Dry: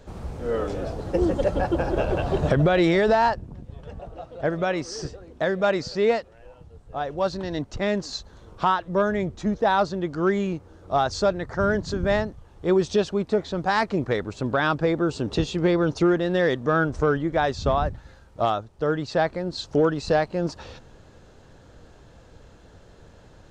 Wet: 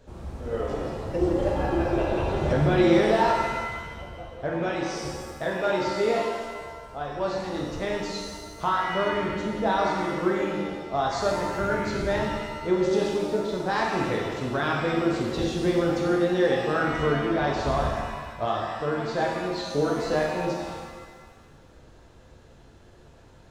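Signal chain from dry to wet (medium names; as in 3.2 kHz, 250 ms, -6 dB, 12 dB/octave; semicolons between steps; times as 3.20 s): pitch-shifted reverb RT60 1.5 s, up +7 st, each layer -8 dB, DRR -2.5 dB; trim -7 dB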